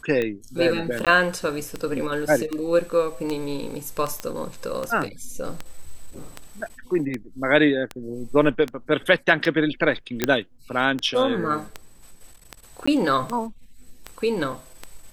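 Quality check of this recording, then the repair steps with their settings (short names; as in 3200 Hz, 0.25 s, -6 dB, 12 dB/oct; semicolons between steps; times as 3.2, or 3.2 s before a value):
tick 78 rpm -14 dBFS
1.05–1.07 gap 17 ms
4.2 pop -13 dBFS
10.24 pop -5 dBFS
12.86–12.88 gap 15 ms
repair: de-click; interpolate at 1.05, 17 ms; interpolate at 12.86, 15 ms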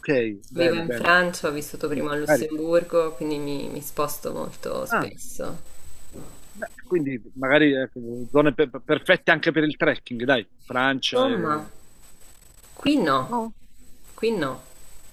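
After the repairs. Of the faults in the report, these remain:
none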